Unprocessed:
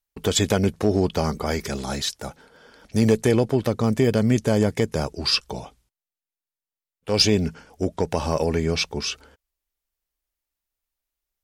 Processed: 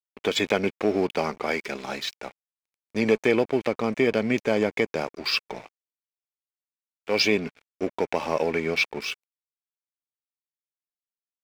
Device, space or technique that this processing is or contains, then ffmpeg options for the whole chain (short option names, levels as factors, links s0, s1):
pocket radio on a weak battery: -af "highpass=270,lowpass=4000,aeval=exprs='sgn(val(0))*max(abs(val(0))-0.00891,0)':c=same,equalizer=f=2300:t=o:w=0.36:g=10"